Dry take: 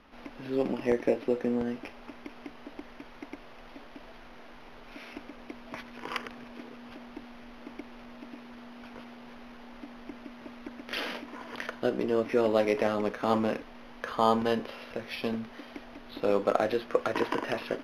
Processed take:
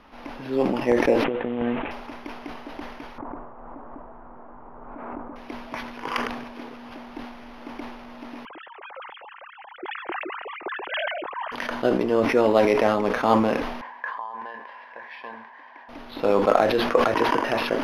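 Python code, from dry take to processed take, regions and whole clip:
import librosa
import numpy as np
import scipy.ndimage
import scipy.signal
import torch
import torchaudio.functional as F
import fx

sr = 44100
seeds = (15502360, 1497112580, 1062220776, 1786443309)

y = fx.chain(x, sr, fx.cvsd(bps=16000),
    fx.over_compress(threshold_db=-31.0, ratio=-0.5), at=(1.24, 1.91))
y = fx.chain(y, sr, fx.cheby1_lowpass(hz=1200.0, order=3),
    fx.pre_swell(db_per_s=23.0), at=(3.18, 5.36))
y = fx.chain(y, sr, fx.sine_speech(),
    fx.sustainer(db_per_s=56.0), at=(8.45, 11.52))
y = fx.chain(y, sr, fx.over_compress(threshold_db=-29.0, ratio=-0.5),
    fx.double_bandpass(hz=1300.0, octaves=0.74), at=(13.81, 15.89))
y = fx.peak_eq(y, sr, hz=900.0, db=5.0, octaves=0.78)
y = fx.sustainer(y, sr, db_per_s=46.0)
y = F.gain(torch.from_numpy(y), 4.5).numpy()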